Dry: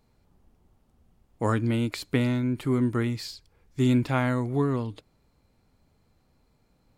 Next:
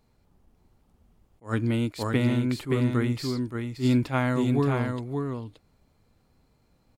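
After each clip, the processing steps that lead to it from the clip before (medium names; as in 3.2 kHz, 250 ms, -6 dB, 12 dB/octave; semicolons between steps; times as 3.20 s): delay 573 ms -5 dB; attacks held to a fixed rise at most 270 dB/s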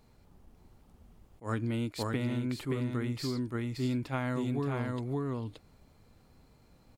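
compression 4:1, threshold -36 dBFS, peak gain reduction 14.5 dB; trim +4 dB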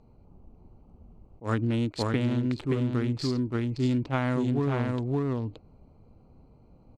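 local Wiener filter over 25 samples; Chebyshev low-pass 6.9 kHz, order 2; trim +7 dB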